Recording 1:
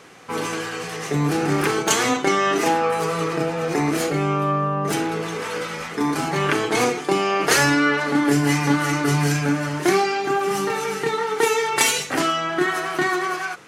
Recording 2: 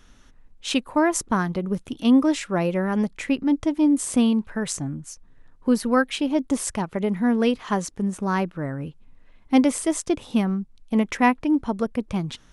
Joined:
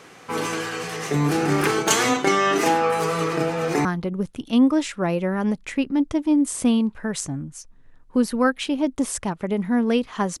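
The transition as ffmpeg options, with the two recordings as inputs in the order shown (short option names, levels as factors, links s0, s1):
-filter_complex "[0:a]apad=whole_dur=10.4,atrim=end=10.4,atrim=end=3.852[s0];[1:a]atrim=start=1.368:end=7.92[s1];[s0][s1]acrossfade=d=0.004:c1=hsin:c2=hsin"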